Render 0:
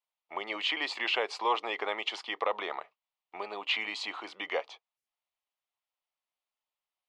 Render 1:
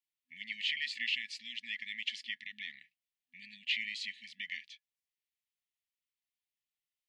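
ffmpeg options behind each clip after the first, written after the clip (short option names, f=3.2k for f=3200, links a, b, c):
-af "afftfilt=real='re*(1-between(b*sr/4096,250,1700))':imag='im*(1-between(b*sr/4096,250,1700))':win_size=4096:overlap=0.75,volume=-3dB"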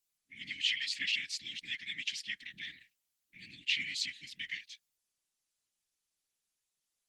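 -af "bass=f=250:g=7,treble=f=4k:g=13,afftfilt=real='hypot(re,im)*cos(2*PI*random(0))':imag='hypot(re,im)*sin(2*PI*random(1))':win_size=512:overlap=0.75,volume=5.5dB" -ar 48000 -c:a libopus -b:a 16k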